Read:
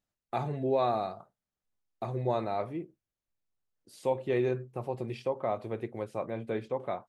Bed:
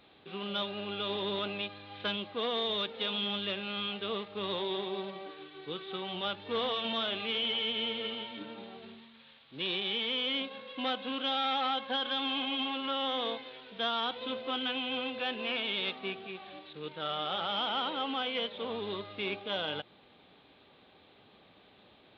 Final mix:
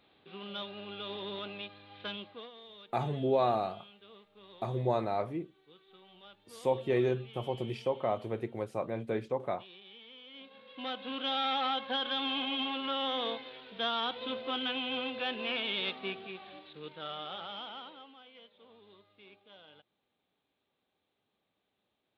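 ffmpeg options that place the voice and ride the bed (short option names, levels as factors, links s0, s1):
-filter_complex "[0:a]adelay=2600,volume=1[s0];[1:a]volume=4.73,afade=t=out:st=2.21:d=0.3:silence=0.199526,afade=t=in:st=10.32:d=1.07:silence=0.105925,afade=t=out:st=16.11:d=2.02:silence=0.0841395[s1];[s0][s1]amix=inputs=2:normalize=0"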